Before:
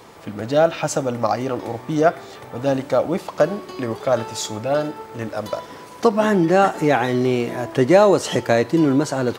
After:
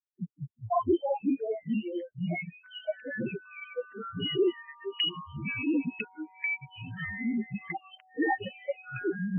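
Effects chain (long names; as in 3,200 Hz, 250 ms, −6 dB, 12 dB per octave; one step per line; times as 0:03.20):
frequency axis turned over on the octave scale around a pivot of 1,600 Hz
camcorder AGC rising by 17 dB per second
mains-hum notches 50/100/150/200/250/300/350/400/450 Hz
noise gate with hold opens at −29 dBFS
high-shelf EQ 4,800 Hz +9 dB
in parallel at +2.5 dB: brickwall limiter −10.5 dBFS, peak gain reduction 8 dB
on the sum: fuzz pedal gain 37 dB, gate −40 dBFS
spectral peaks only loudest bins 1
auto-filter low-pass saw down 1 Hz 590–2,000 Hz
0:02.63–0:04.35: steady tone 1,500 Hz −50 dBFS
delay with pitch and tempo change per echo 141 ms, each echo −4 semitones, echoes 3
MP3 8 kbit/s 22,050 Hz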